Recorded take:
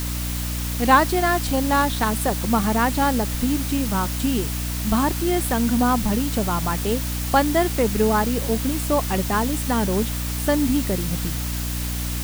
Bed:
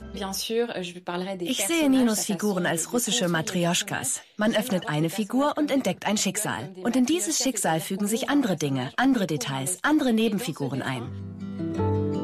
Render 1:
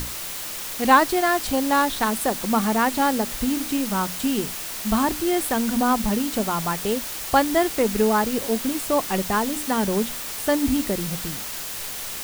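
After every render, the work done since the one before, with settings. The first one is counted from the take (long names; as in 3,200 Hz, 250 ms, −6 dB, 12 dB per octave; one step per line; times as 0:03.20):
mains-hum notches 60/120/180/240/300 Hz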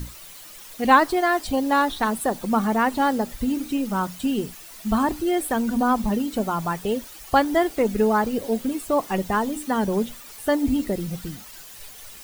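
broadband denoise 13 dB, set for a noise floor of −32 dBFS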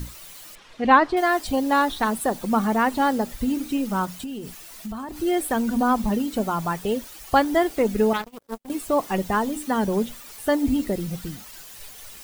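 0:00.55–0:01.17: low-pass filter 3,400 Hz
0:04.05–0:05.22: downward compressor 10 to 1, threshold −29 dBFS
0:08.13–0:08.70: power curve on the samples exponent 3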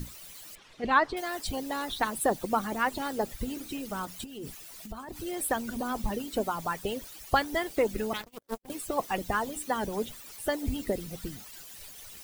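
harmonic and percussive parts rebalanced harmonic −13 dB
parametric band 1,100 Hz −3 dB 1.7 octaves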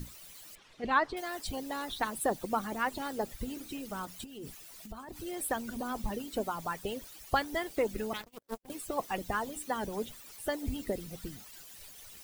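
level −4 dB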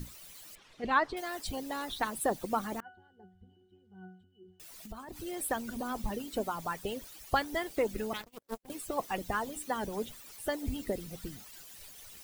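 0:02.80–0:04.60: resonances in every octave F#, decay 0.45 s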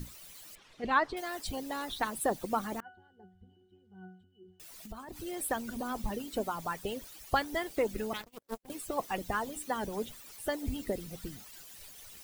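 no processing that can be heard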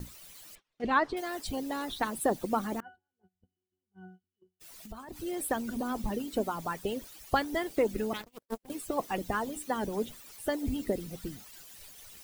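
noise gate −52 dBFS, range −26 dB
dynamic equaliser 280 Hz, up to +5 dB, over −46 dBFS, Q 0.73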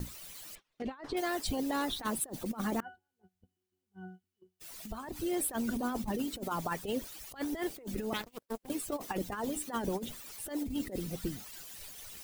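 compressor whose output falls as the input rises −34 dBFS, ratio −0.5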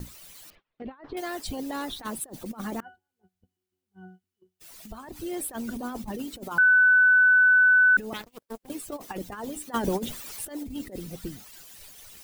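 0:00.50–0:01.17: high-frequency loss of the air 300 metres
0:06.58–0:07.97: beep over 1,500 Hz −14.5 dBFS
0:09.74–0:10.45: clip gain +7.5 dB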